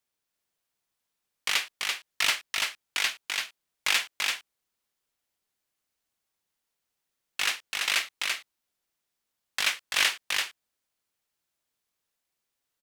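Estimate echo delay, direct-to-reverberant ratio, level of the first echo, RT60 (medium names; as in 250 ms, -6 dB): 337 ms, no reverb, -3.5 dB, no reverb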